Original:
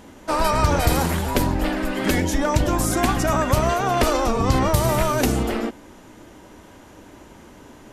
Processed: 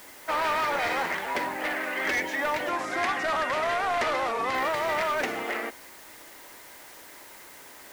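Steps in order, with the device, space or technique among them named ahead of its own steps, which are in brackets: drive-through speaker (band-pass 550–3000 Hz; peaking EQ 2 kHz +10 dB 0.55 oct; hard clipper -19.5 dBFS, distortion -12 dB; white noise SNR 20 dB); 2.69–4.55 s: low-pass 10 kHz 12 dB/octave; trim -3 dB

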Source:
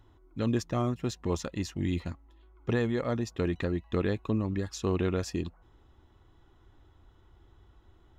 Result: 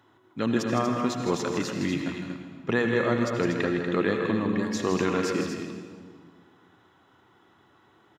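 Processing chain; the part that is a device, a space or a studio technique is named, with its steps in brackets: stadium PA (high-pass 140 Hz 24 dB/octave; peaking EQ 1.6 kHz +6 dB 1.8 oct; loudspeakers at several distances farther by 55 m -8 dB, 82 m -8 dB; reverberation RT60 1.7 s, pre-delay 69 ms, DRR 6 dB); trim +2.5 dB

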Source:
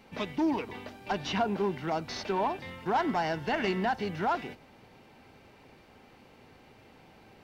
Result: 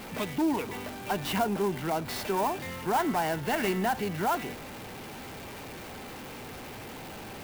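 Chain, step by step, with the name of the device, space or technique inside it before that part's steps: early CD player with a faulty converter (jump at every zero crossing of -37.5 dBFS; sampling jitter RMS 0.03 ms)

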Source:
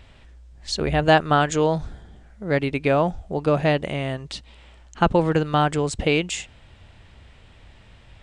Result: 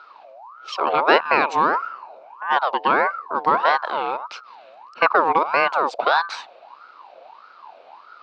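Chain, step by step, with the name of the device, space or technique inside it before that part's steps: voice changer toy (ring modulator with a swept carrier 980 Hz, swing 40%, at 1.6 Hz; cabinet simulation 450–4200 Hz, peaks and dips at 940 Hz +4 dB, 1.9 kHz -10 dB, 3.3 kHz -8 dB); trim +6 dB

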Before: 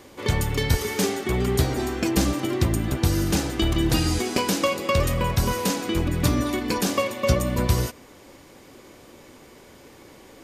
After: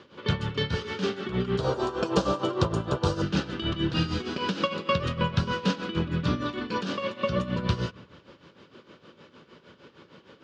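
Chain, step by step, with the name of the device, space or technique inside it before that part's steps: 1.59–3.22 s: graphic EQ 250/500/1000/2000/8000 Hz -7/+10/+10/-9/+10 dB; combo amplifier with spring reverb and tremolo (spring tank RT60 1.4 s, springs 37/58 ms, chirp 70 ms, DRR 17.5 dB; tremolo 6.5 Hz, depth 74%; cabinet simulation 110–4400 Hz, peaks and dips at 170 Hz +6 dB, 290 Hz -5 dB, 750 Hz -9 dB, 1.4 kHz +6 dB, 2.1 kHz -7 dB, 3 kHz +4 dB)

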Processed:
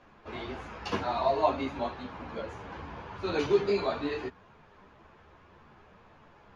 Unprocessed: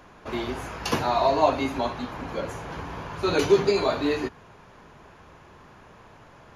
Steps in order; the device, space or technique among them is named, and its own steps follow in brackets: string-machine ensemble chorus (three-phase chorus; low-pass 4.4 kHz 12 dB/octave); trim -3.5 dB

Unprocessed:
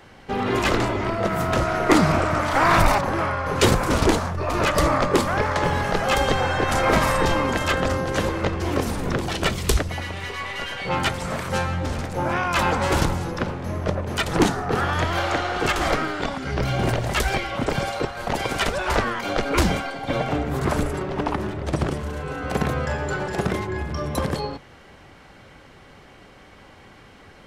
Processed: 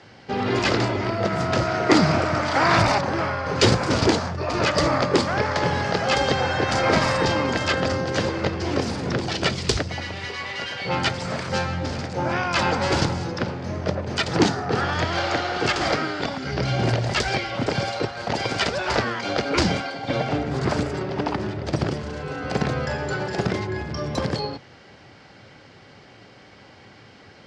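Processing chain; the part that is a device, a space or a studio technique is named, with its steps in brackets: car door speaker (cabinet simulation 100–7100 Hz, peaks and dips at 110 Hz +6 dB, 1.1 kHz -4 dB, 4.8 kHz +8 dB)

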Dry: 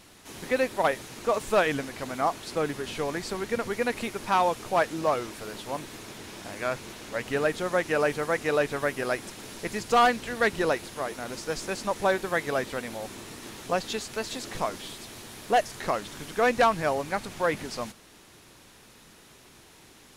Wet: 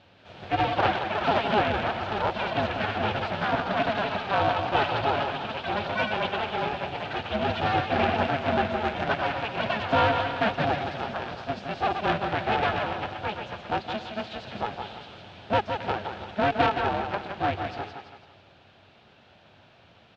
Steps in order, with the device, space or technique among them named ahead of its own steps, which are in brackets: thinning echo 166 ms, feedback 46%, high-pass 440 Hz, level -5 dB; ever faster or slower copies 192 ms, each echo +5 st, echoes 3; 6.61–7.96 s: peaking EQ 1.3 kHz -5 dB 1.3 oct; delay 267 ms -17.5 dB; ring modulator pedal into a guitar cabinet (polarity switched at an audio rate 210 Hz; cabinet simulation 88–3400 Hz, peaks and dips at 96 Hz +8 dB, 300 Hz -5 dB, 450 Hz -5 dB, 710 Hz +4 dB, 1.1 kHz -7 dB, 2 kHz -8 dB)

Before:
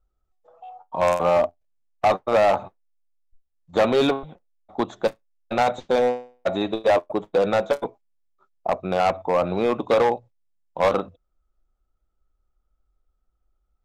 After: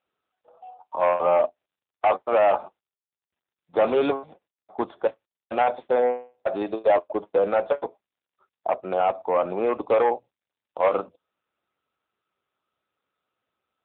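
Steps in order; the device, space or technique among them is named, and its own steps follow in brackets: 8.92–9.32 s: dynamic bell 2 kHz, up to -4 dB, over -36 dBFS, Q 1.3; telephone (band-pass 320–3500 Hz; AMR-NB 7.95 kbps 8 kHz)

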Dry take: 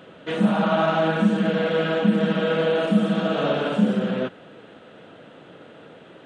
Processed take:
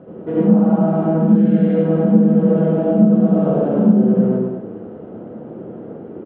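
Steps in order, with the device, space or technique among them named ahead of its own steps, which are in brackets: 1.28–1.75 s: ten-band graphic EQ 1 kHz -12 dB, 2 kHz +9 dB, 4 kHz +9 dB; multi-tap echo 100/210 ms -6.5/-14 dB; television next door (compression 5:1, threshold -24 dBFS, peak gain reduction 10.5 dB; low-pass 540 Hz 12 dB/octave; reverberation RT60 0.55 s, pre-delay 65 ms, DRR -4 dB); trim +7.5 dB

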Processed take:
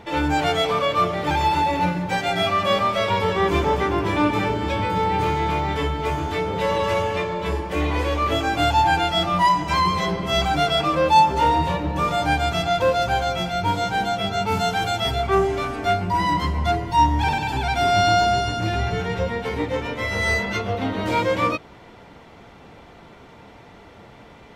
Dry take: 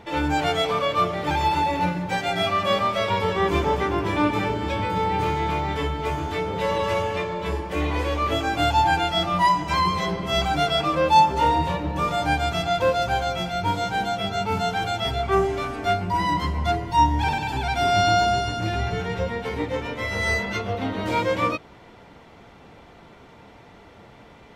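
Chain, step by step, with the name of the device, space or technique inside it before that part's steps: 14.46–15.26 s: treble shelf 4.4 kHz -> 8.7 kHz +6 dB; parallel distortion (in parallel at -10 dB: hard clipper -20.5 dBFS, distortion -10 dB)

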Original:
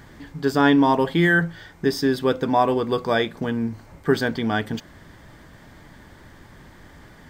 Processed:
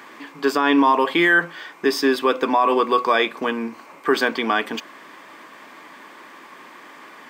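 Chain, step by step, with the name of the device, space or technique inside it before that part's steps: laptop speaker (high-pass 270 Hz 24 dB/octave; peaking EQ 1.1 kHz +12 dB 0.37 oct; peaking EQ 2.5 kHz +10.5 dB 0.48 oct; peak limiter -11 dBFS, peak gain reduction 9.5 dB); trim +3.5 dB

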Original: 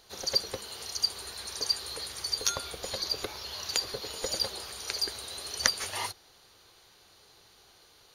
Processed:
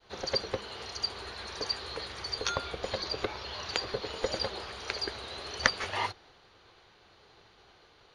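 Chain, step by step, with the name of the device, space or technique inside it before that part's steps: hearing-loss simulation (low-pass 2.9 kHz 12 dB/octave; expander -60 dBFS); trim +4.5 dB

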